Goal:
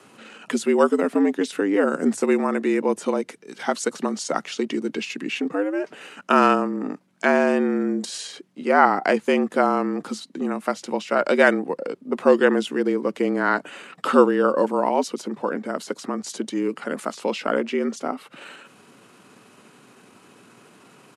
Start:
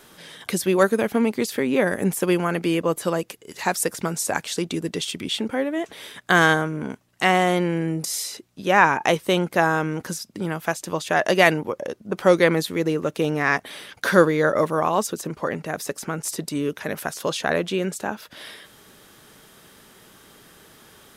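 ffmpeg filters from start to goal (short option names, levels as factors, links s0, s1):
-af "bass=f=250:g=3,treble=f=4000:g=-6,asetrate=34006,aresample=44100,atempo=1.29684,afreqshift=94"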